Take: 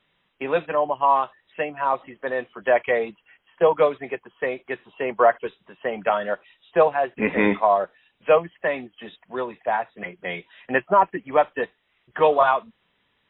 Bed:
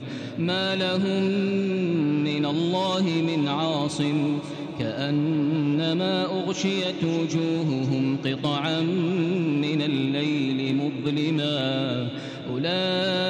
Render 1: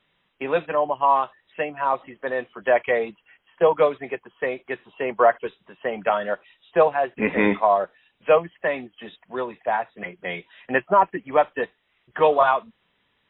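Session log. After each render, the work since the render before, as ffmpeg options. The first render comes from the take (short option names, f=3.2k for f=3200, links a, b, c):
-af anull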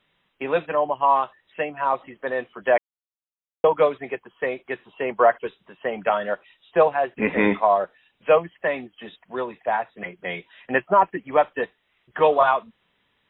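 -filter_complex "[0:a]asplit=3[a][b][c];[a]atrim=end=2.78,asetpts=PTS-STARTPTS,afade=t=out:st=2.776:d=0.004:c=hsin[d];[b]atrim=start=2.78:end=3.64,asetpts=PTS-STARTPTS,volume=0[e];[c]atrim=start=3.64,asetpts=PTS-STARTPTS,afade=t=in:d=0.004:c=hsin[f];[d][e][f]concat=n=3:v=0:a=1"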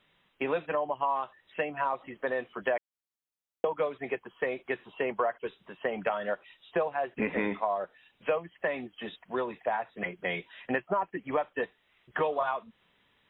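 -af "acompressor=threshold=-27dB:ratio=5"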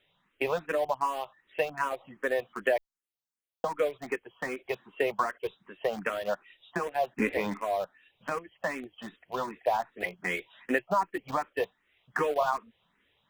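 -filter_complex "[0:a]asplit=2[a][b];[b]aeval=exprs='val(0)*gte(abs(val(0)),0.0266)':c=same,volume=-4.5dB[c];[a][c]amix=inputs=2:normalize=0,asplit=2[d][e];[e]afreqshift=2.6[f];[d][f]amix=inputs=2:normalize=1"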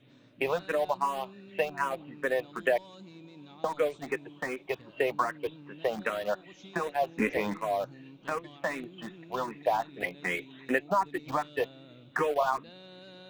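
-filter_complex "[1:a]volume=-26dB[a];[0:a][a]amix=inputs=2:normalize=0"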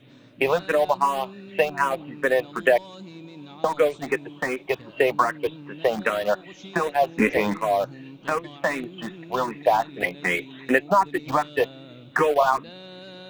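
-af "volume=8dB"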